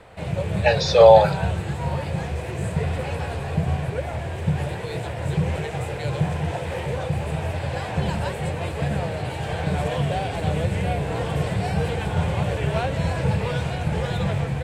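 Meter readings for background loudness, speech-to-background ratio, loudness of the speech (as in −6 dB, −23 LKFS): −26.0 LKFS, 10.5 dB, −15.5 LKFS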